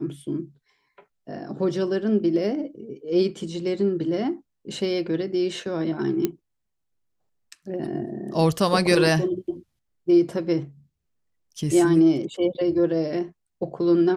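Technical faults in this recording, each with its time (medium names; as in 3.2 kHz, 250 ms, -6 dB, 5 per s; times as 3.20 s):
6.25 s: pop -9 dBFS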